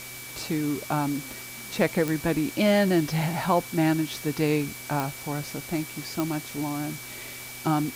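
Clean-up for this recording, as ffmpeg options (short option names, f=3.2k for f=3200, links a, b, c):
-af "adeclick=t=4,bandreject=f=123.9:t=h:w=4,bandreject=f=247.8:t=h:w=4,bandreject=f=371.7:t=h:w=4,bandreject=f=2.3k:w=30,afwtdn=0.01"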